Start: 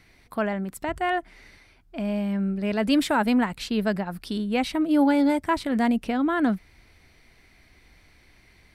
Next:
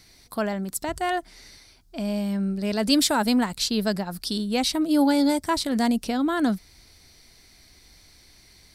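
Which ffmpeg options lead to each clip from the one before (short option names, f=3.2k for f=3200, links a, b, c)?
-af "highshelf=f=3.4k:t=q:w=1.5:g=10.5"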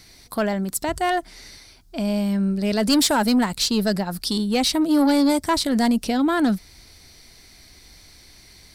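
-af "asoftclip=type=tanh:threshold=-17dB,volume=5dB"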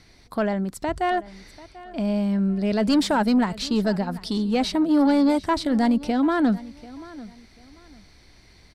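-af "aemphasis=mode=reproduction:type=75fm,aecho=1:1:740|1480:0.112|0.0303,volume=-1.5dB"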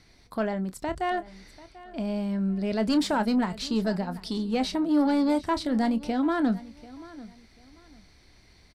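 -filter_complex "[0:a]asplit=2[a][b];[b]adelay=27,volume=-13dB[c];[a][c]amix=inputs=2:normalize=0,volume=-4.5dB"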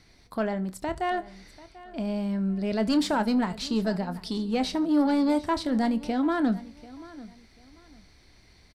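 -af "aecho=1:1:74|148|222:0.0794|0.0318|0.0127"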